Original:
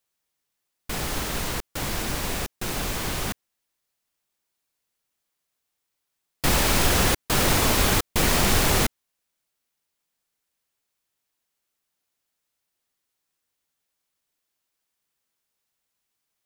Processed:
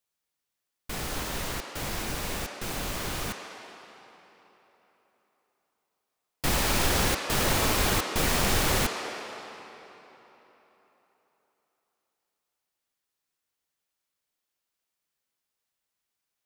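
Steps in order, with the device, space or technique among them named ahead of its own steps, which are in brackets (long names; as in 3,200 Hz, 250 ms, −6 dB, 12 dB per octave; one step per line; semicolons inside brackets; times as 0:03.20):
filtered reverb send (on a send: high-pass filter 380 Hz 12 dB per octave + low-pass filter 6,800 Hz 12 dB per octave + convolution reverb RT60 3.8 s, pre-delay 26 ms, DRR 3 dB)
on the sum: level −5 dB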